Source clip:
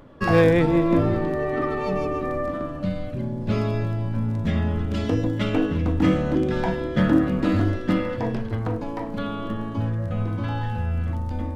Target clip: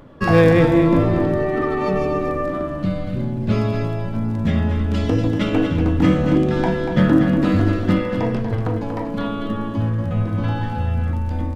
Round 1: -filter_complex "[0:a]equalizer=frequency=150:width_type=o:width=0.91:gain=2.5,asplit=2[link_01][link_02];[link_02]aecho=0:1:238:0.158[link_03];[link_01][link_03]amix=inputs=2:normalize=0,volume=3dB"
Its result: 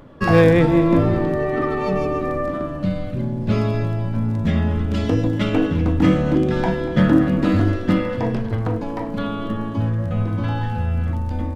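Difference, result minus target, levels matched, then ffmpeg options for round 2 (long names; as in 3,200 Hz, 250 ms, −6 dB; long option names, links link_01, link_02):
echo-to-direct −8.5 dB
-filter_complex "[0:a]equalizer=frequency=150:width_type=o:width=0.91:gain=2.5,asplit=2[link_01][link_02];[link_02]aecho=0:1:238:0.422[link_03];[link_01][link_03]amix=inputs=2:normalize=0,volume=3dB"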